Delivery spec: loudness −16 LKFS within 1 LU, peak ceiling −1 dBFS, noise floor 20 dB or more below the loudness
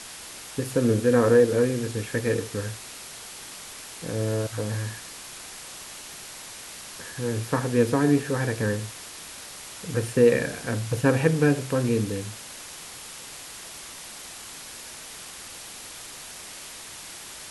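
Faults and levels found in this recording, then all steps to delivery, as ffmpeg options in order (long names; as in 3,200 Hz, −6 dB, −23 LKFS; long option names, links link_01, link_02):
background noise floor −41 dBFS; target noise floor −45 dBFS; integrated loudness −24.5 LKFS; sample peak −6.5 dBFS; target loudness −16.0 LKFS
→ -af "afftdn=noise_reduction=6:noise_floor=-41"
-af "volume=8.5dB,alimiter=limit=-1dB:level=0:latency=1"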